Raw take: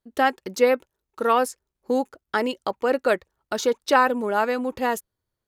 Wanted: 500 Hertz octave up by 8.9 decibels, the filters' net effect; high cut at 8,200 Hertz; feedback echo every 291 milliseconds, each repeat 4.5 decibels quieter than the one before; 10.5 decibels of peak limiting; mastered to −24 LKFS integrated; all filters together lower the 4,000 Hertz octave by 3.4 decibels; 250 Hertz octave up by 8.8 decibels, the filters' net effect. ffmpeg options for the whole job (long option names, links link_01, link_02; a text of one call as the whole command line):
ffmpeg -i in.wav -af "lowpass=8200,equalizer=frequency=250:width_type=o:gain=7.5,equalizer=frequency=500:width_type=o:gain=8,equalizer=frequency=4000:width_type=o:gain=-4.5,alimiter=limit=-9dB:level=0:latency=1,aecho=1:1:291|582|873|1164|1455|1746|2037|2328|2619:0.596|0.357|0.214|0.129|0.0772|0.0463|0.0278|0.0167|0.01,volume=-5.5dB" out.wav